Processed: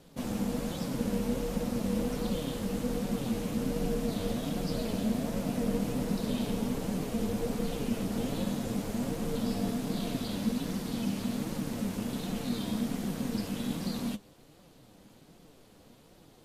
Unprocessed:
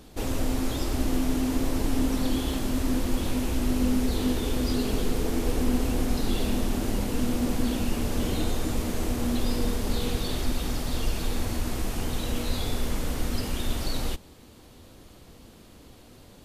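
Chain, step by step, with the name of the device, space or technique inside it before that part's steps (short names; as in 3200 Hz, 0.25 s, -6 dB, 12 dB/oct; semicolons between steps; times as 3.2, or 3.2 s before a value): alien voice (ring modulator 220 Hz; flange 1.3 Hz, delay 5.1 ms, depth 5.5 ms, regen +50%)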